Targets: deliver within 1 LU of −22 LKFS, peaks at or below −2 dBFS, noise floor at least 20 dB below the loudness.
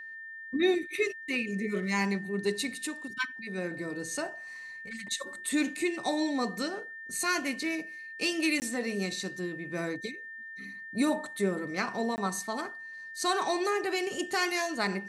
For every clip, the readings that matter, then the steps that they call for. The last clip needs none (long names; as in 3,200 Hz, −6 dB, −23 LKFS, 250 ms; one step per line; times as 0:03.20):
number of dropouts 2; longest dropout 19 ms; interfering tone 1,800 Hz; level of the tone −41 dBFS; integrated loudness −32.0 LKFS; sample peak −16.0 dBFS; target loudness −22.0 LKFS
→ repair the gap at 0:08.60/0:12.16, 19 ms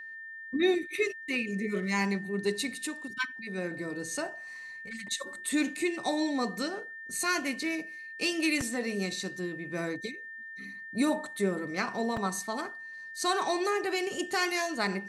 number of dropouts 0; interfering tone 1,800 Hz; level of the tone −41 dBFS
→ notch filter 1,800 Hz, Q 30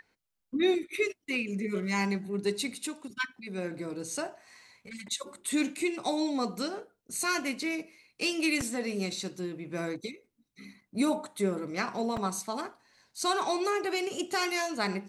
interfering tone none found; integrated loudness −32.0 LKFS; sample peak −16.0 dBFS; target loudness −22.0 LKFS
→ level +10 dB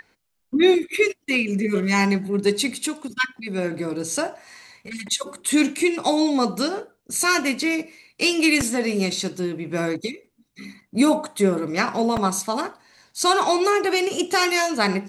integrated loudness −22.0 LKFS; sample peak −6.0 dBFS; background noise floor −72 dBFS